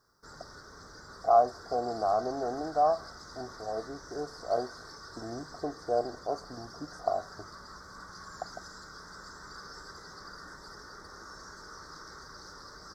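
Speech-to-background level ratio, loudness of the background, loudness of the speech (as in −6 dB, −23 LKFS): 15.5 dB, −47.0 LKFS, −31.5 LKFS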